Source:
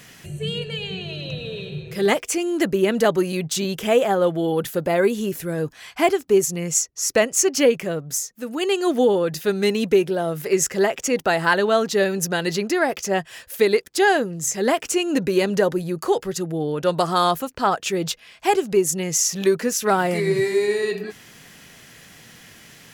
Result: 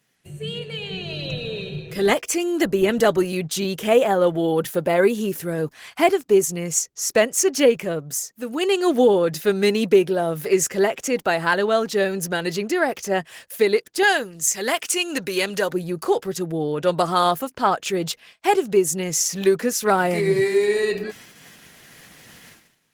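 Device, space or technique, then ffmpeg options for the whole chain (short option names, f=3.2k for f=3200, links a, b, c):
video call: -filter_complex "[0:a]asettb=1/sr,asplit=3[a][b][c];[a]atrim=end=14.034[d];[b]atrim=start=14.03:end=15.72,asetpts=PTS-STARTPTS,afade=t=in:d=0.004:c=qsin,afade=t=out:st=1.686:d=0.004:c=qsin,tiltshelf=f=970:g=-7[e];[c]atrim=start=15.716[f];[d][e]acrossfade=d=0.004:c1=hsin:c2=qsin[g];[g][f]acrossfade=d=0.004:c1=qsin:c2=hsin,highpass=f=110:p=1,dynaudnorm=f=660:g=3:m=7dB,agate=range=-18dB:threshold=-40dB:ratio=16:detection=peak,volume=-3dB" -ar 48000 -c:a libopus -b:a 20k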